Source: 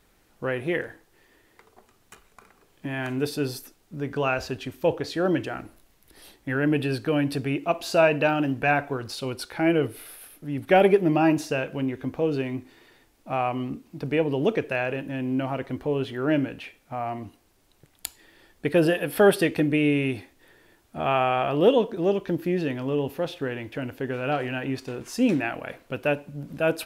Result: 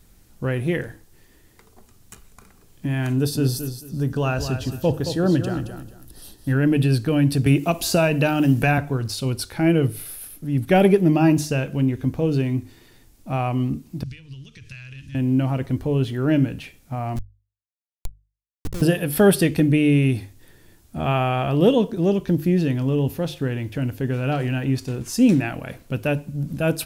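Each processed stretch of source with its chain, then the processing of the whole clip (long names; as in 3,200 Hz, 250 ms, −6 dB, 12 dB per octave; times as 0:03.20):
0:03.13–0:06.53: parametric band 2,200 Hz −14 dB 0.24 octaves + repeating echo 221 ms, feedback 24%, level −9 dB
0:07.46–0:08.78: high-shelf EQ 7,800 Hz +7 dB + multiband upward and downward compressor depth 70%
0:14.03–0:15.15: low-pass filter 3,700 Hz + downward compressor 12 to 1, threshold −31 dBFS + drawn EQ curve 110 Hz 0 dB, 170 Hz −15 dB, 750 Hz −29 dB, 1,100 Hz −13 dB, 5,600 Hz +13 dB
0:17.16–0:18.82: parametric band 1,100 Hz +12 dB 2.6 octaves + downward compressor 4 to 1, threshold −24 dBFS + comparator with hysteresis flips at −24.5 dBFS
whole clip: bass and treble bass +15 dB, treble +10 dB; mains-hum notches 50/100/150 Hz; level −1 dB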